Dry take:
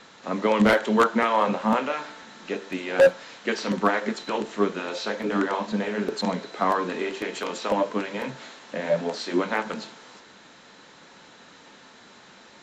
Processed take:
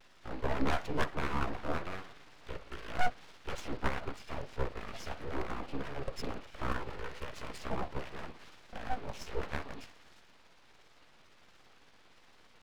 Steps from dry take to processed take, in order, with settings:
pitch shift by two crossfaded delay taps −7.5 semitones
full-wave rectification
pitch vibrato 1.4 Hz 74 cents
level −8 dB

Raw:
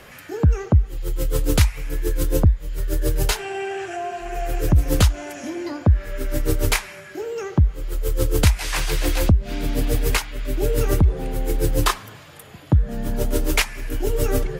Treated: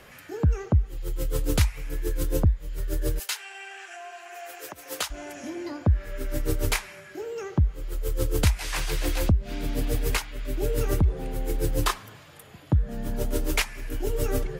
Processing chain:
0:03.18–0:05.10: high-pass filter 1,500 Hz → 660 Hz 12 dB per octave
level −5.5 dB

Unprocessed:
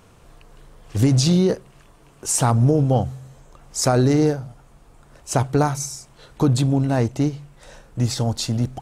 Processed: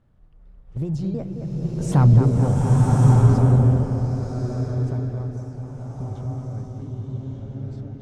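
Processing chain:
pitch shifter gated in a rhythm −2.5 semitones, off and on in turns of 238 ms
source passing by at 0:02.19, 42 m/s, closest 9.9 metres
in parallel at −1 dB: downward compressor, threshold −37 dBFS, peak gain reduction 21 dB
on the sum: harmonic generator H 5 −23 dB, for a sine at −6 dBFS
on a send: bucket-brigade delay 241 ms, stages 4,096, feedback 64%, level −7.5 dB
on the sum: speed change +10%
RIAA equalisation playback
slow-attack reverb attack 1,190 ms, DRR −3.5 dB
level −8 dB

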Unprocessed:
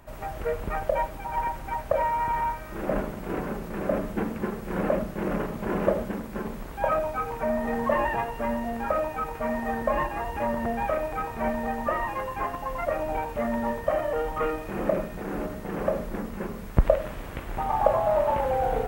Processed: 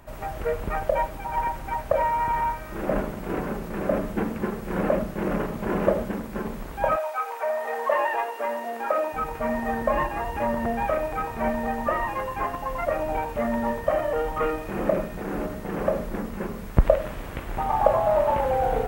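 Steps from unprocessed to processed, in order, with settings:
0:06.95–0:09.12: high-pass filter 620 Hz → 280 Hz 24 dB per octave
level +2 dB

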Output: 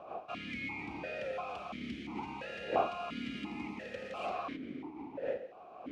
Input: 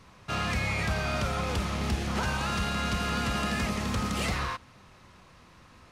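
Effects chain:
wind on the microphone 590 Hz −33 dBFS
formant filter that steps through the vowels 2.9 Hz
level +2 dB

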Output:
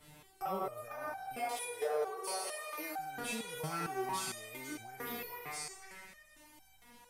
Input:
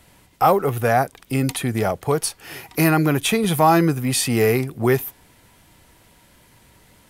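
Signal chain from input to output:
peak hold with a decay on every bin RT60 1.10 s
downward compressor 2.5 to 1, threshold −27 dBFS, peak gain reduction 12.5 dB
0:01.36–0:02.99: low shelf with overshoot 320 Hz −14 dB, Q 3
echo through a band-pass that steps 462 ms, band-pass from 930 Hz, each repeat 1.4 octaves, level −1 dB
brickwall limiter −18.5 dBFS, peak gain reduction 8 dB
step-sequenced resonator 4.4 Hz 150–770 Hz
level +3.5 dB

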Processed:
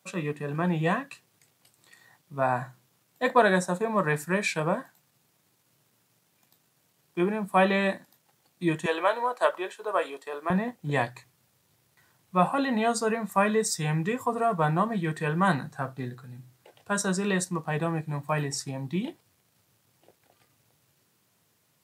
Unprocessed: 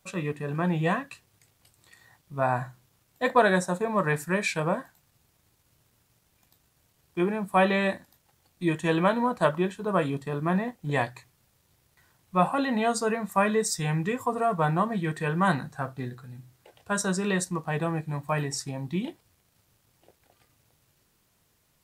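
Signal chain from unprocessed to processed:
high-pass filter 130 Hz 24 dB per octave, from 0:08.86 430 Hz, from 0:10.50 100 Hz

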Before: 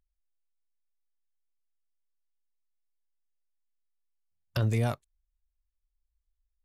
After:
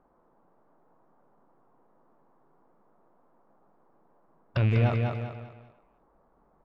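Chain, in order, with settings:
loose part that buzzes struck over −27 dBFS, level −27 dBFS
on a send: repeating echo 196 ms, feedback 36%, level −5.5 dB
on the sum: noise in a band 140–1,100 Hz −72 dBFS
in parallel at 0 dB: brickwall limiter −26 dBFS, peak gain reduction 11.5 dB
on the sum: high-frequency loss of the air 290 metres
far-end echo of a speakerphone 300 ms, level −15 dB

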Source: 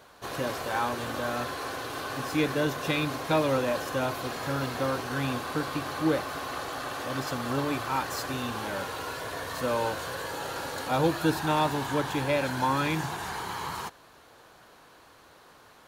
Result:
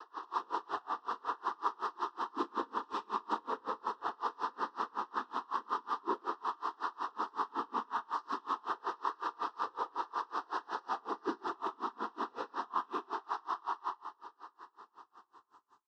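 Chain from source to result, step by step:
fade-out on the ending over 4.35 s
elliptic band-pass filter 310–4,200 Hz
parametric band 1,100 Hz +12 dB 0.58 octaves
downward compressor 5 to 1, threshold −40 dBFS, peak gain reduction 21 dB
sine wavefolder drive 6 dB, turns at −27.5 dBFS
background noise pink −70 dBFS
cochlear-implant simulation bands 12
high-frequency loss of the air 68 metres
phaser with its sweep stopped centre 590 Hz, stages 6
far-end echo of a speakerphone 140 ms, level −9 dB
four-comb reverb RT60 1 s, combs from 32 ms, DRR 0 dB
tremolo with a sine in dB 5.4 Hz, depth 31 dB

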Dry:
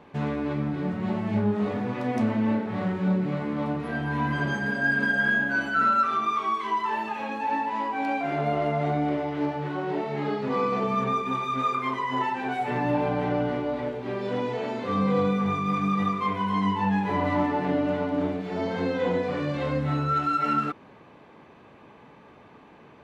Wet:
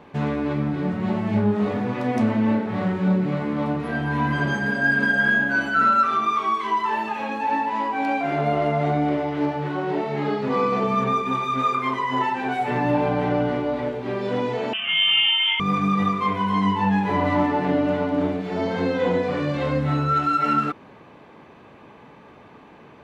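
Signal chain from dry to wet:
0:14.73–0:15.60: voice inversion scrambler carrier 3,300 Hz
level +4 dB

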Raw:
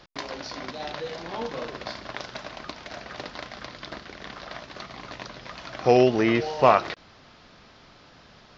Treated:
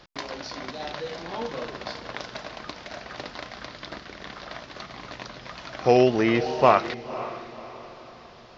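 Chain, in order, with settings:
feedback delay with all-pass diffusion 536 ms, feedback 42%, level −14.5 dB

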